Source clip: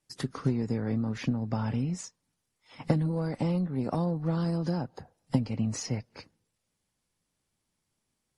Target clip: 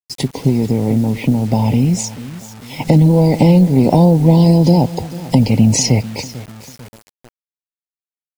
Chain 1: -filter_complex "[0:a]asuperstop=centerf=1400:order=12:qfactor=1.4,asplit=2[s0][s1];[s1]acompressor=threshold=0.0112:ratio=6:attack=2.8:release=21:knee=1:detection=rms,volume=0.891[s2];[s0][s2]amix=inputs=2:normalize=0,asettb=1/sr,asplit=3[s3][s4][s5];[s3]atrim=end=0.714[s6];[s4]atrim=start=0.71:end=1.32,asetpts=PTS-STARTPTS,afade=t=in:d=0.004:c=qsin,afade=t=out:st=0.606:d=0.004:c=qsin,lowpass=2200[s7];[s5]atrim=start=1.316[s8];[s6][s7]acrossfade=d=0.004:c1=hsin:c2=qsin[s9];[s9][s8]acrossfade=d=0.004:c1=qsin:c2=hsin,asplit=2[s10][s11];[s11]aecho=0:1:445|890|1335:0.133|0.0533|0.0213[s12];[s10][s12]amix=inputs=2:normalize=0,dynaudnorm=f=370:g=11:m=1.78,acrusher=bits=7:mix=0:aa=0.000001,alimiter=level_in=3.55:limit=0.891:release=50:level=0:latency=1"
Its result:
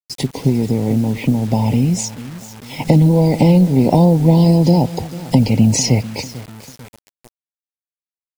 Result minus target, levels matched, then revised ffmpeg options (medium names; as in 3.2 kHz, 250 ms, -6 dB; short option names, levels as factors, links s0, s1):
compression: peak gain reduction +6 dB
-filter_complex "[0:a]asuperstop=centerf=1400:order=12:qfactor=1.4,asplit=2[s0][s1];[s1]acompressor=threshold=0.0251:ratio=6:attack=2.8:release=21:knee=1:detection=rms,volume=0.891[s2];[s0][s2]amix=inputs=2:normalize=0,asettb=1/sr,asplit=3[s3][s4][s5];[s3]atrim=end=0.714[s6];[s4]atrim=start=0.71:end=1.32,asetpts=PTS-STARTPTS,afade=t=in:d=0.004:c=qsin,afade=t=out:st=0.606:d=0.004:c=qsin,lowpass=2200[s7];[s5]atrim=start=1.316[s8];[s6][s7]acrossfade=d=0.004:c1=hsin:c2=qsin[s9];[s9][s8]acrossfade=d=0.004:c1=qsin:c2=hsin,asplit=2[s10][s11];[s11]aecho=0:1:445|890|1335:0.133|0.0533|0.0213[s12];[s10][s12]amix=inputs=2:normalize=0,dynaudnorm=f=370:g=11:m=1.78,acrusher=bits=7:mix=0:aa=0.000001,alimiter=level_in=3.55:limit=0.891:release=50:level=0:latency=1"